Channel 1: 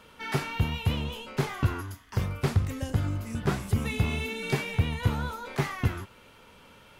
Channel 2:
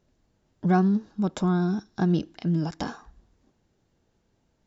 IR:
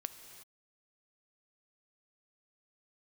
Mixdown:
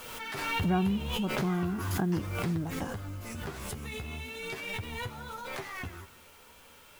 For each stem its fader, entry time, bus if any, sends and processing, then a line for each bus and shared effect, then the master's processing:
-2.0 dB, 0.00 s, send -4 dB, bell 150 Hz -7 dB 2 oct; compressor, threshold -35 dBFS, peak gain reduction 12 dB; flange 0.39 Hz, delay 7.9 ms, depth 6.4 ms, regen +24%
-8.5 dB, 0.00 s, send -12 dB, steep low-pass 2800 Hz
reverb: on, pre-delay 3 ms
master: requantised 10-bit, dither triangular; backwards sustainer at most 32 dB/s

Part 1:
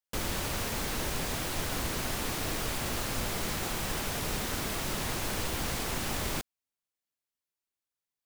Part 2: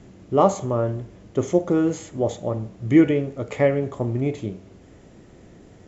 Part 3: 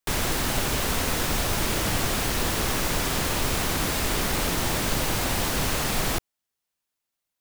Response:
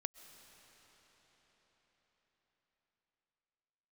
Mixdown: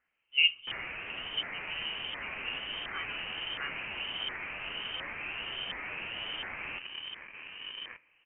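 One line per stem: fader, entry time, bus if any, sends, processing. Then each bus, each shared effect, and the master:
+0.5 dB, 1.55 s, send -7 dB, flange 0.67 Hz, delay 4.2 ms, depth 3.5 ms, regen -77%; steep high-pass 270 Hz 48 dB/oct; running maximum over 65 samples
-11.5 dB, 0.00 s, send -16 dB, upward expander 1.5:1, over -34 dBFS
-11.5 dB, 0.60 s, send -7 dB, low shelf 170 Hz +8.5 dB; flange 0.53 Hz, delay 9.1 ms, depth 2.5 ms, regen +39%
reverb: on, RT60 5.3 s, pre-delay 90 ms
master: LFO high-pass saw down 1.4 Hz 280–1500 Hz; low shelf 370 Hz -4 dB; inverted band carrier 3400 Hz

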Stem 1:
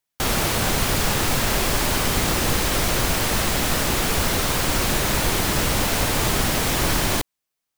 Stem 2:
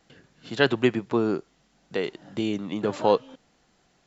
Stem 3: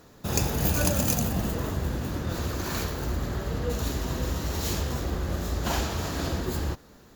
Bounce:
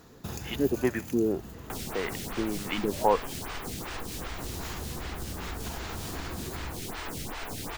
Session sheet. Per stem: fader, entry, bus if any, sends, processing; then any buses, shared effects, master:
-6.0 dB, 1.50 s, bus A, no send, self-modulated delay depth 0.081 ms; photocell phaser 2.6 Hz
-6.5 dB, 0.00 s, no bus, no send, LFO low-pass saw up 1.8 Hz 220–3200 Hz; band shelf 2400 Hz +10.5 dB 1.3 oct
0.0 dB, 0.00 s, bus A, no send, compressor, threshold -27 dBFS, peak gain reduction 8 dB; auto duck -12 dB, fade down 1.05 s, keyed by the second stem
bus A: 0.0 dB, bell 570 Hz -7.5 dB 0.21 oct; compressor, threshold -33 dBFS, peak gain reduction 9.5 dB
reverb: off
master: dry

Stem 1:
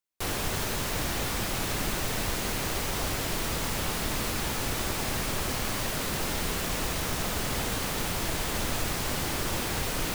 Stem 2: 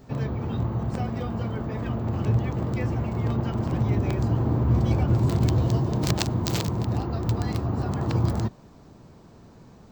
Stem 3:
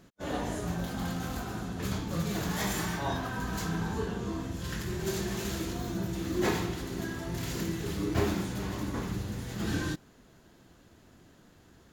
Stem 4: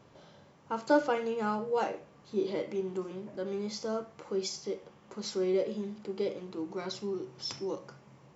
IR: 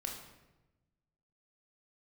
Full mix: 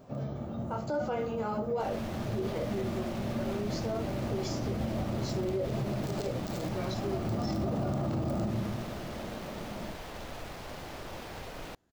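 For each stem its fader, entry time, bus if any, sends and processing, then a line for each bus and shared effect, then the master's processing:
-12.5 dB, 1.60 s, no send, median filter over 5 samples
6.95 s -17.5 dB -> 7.38 s -7 dB, 0.00 s, send -4 dB, high shelf 4300 Hz +9.5 dB; small resonant body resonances 220/330/570/1200 Hz, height 13 dB, ringing for 30 ms; auto duck -11 dB, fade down 0.25 s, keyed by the fourth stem
-17.0 dB, 0.15 s, no send, compressor, threshold -40 dBFS, peak gain reduction 16 dB
+0.5 dB, 0.00 s, no send, detuned doubles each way 19 cents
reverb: on, RT60 1.0 s, pre-delay 22 ms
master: bell 640 Hz +6.5 dB 0.97 oct; limiter -24 dBFS, peak gain reduction 12 dB

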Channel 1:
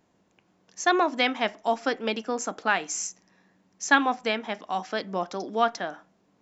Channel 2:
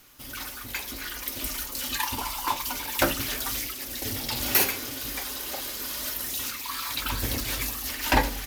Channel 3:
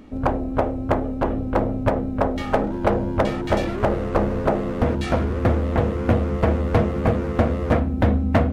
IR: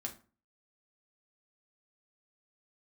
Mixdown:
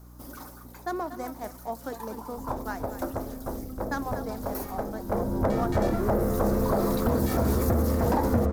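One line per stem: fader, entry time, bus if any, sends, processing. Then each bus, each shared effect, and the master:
-8.0 dB, 0.00 s, no send, echo send -11.5 dB, median filter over 15 samples; low-pass opened by the level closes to 2300 Hz; hum 60 Hz, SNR 11 dB
-5.0 dB, 0.00 s, no send, no echo send, band shelf 530 Hz +10 dB 2.8 oct; auto duck -12 dB, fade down 0.65 s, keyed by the first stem
5.03 s -14.5 dB -> 5.44 s -2.5 dB, 2.25 s, send -5 dB, no echo send, dry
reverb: on, RT60 0.35 s, pre-delay 4 ms
echo: echo 0.239 s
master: bell 2800 Hz -14.5 dB 1.1 oct; limiter -15.5 dBFS, peak gain reduction 9.5 dB

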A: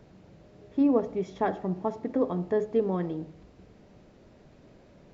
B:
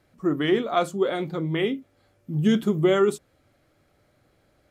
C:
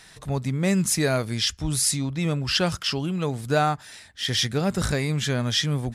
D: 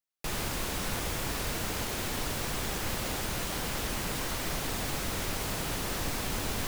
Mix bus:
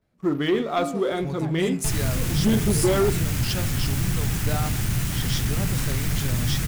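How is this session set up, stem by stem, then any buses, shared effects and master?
-18.5 dB, 0.00 s, no send, dry
-7.0 dB, 0.00 s, no send, gate with hold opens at -56 dBFS
-16.5 dB, 0.95 s, no send, high shelf 6800 Hz +7.5 dB
-1.5 dB, 1.60 s, no send, graphic EQ 125/500/1000/4000 Hz +11/-12/-6/-5 dB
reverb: off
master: low shelf 150 Hz +5 dB; de-hum 76.84 Hz, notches 37; sample leveller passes 2

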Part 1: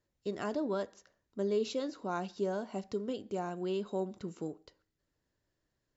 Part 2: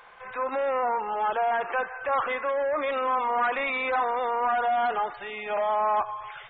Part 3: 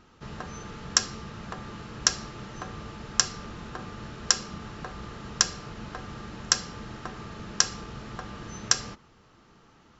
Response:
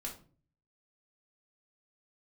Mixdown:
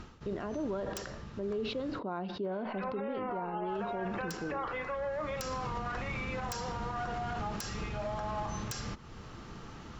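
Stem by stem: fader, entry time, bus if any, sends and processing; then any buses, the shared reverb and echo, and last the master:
+1.5 dB, 0.00 s, no bus, no send, LPF 3800 Hz 24 dB/oct; high shelf 2300 Hz -10 dB; sustainer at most 48 dB/s
-8.0 dB, 2.45 s, bus A, send -5 dB, dry
-5.5 dB, 0.00 s, muted 1.99–3.69, bus A, no send, low shelf 150 Hz +8 dB; sine folder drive 10 dB, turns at -1.5 dBFS; auto duck -18 dB, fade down 0.25 s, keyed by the first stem
bus A: 0.0 dB, compressor 2.5:1, threshold -38 dBFS, peak gain reduction 16 dB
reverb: on, RT60 0.40 s, pre-delay 3 ms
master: limiter -28 dBFS, peak gain reduction 10.5 dB

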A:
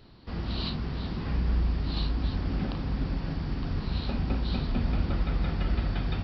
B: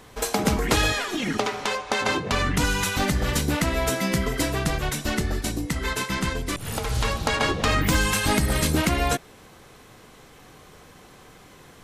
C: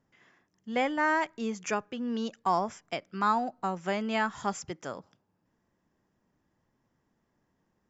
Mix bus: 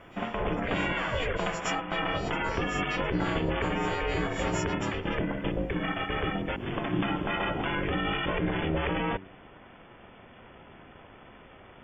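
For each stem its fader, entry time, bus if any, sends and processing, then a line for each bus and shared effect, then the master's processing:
-12.5 dB, 0.50 s, bus A, no send, dry
+1.5 dB, 0.00 s, bus A, no send, dry
+2.5 dB, 0.00 s, no bus, no send, frequency quantiser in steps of 4 st; compressor 2:1, threshold -45 dBFS, peak gain reduction 13.5 dB
bus A: 0.0 dB, brick-wall FIR low-pass 3300 Hz; limiter -17.5 dBFS, peak gain reduction 9 dB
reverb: off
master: de-hum 46.28 Hz, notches 5; ring modulator 240 Hz

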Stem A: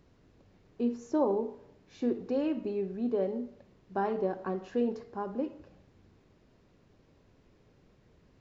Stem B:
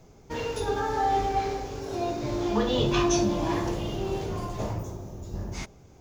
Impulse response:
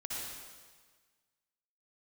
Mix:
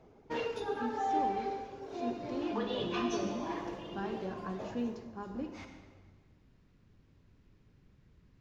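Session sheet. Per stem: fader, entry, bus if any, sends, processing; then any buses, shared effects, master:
-1.5 dB, 0.00 s, send -9 dB, bell 570 Hz -13 dB 2.1 oct; vocal rider 2 s
-3.0 dB, 0.00 s, send -10 dB, reverb removal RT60 1.1 s; three-band isolator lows -16 dB, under 180 Hz, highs -16 dB, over 4500 Hz; auto duck -8 dB, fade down 0.40 s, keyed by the first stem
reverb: on, RT60 1.5 s, pre-delay 53 ms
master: mismatched tape noise reduction decoder only

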